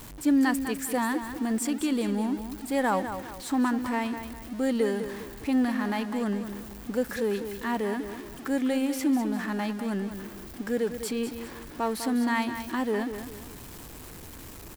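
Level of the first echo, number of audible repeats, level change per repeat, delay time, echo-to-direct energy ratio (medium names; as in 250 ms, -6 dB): -9.5 dB, 3, -8.5 dB, 201 ms, -9.0 dB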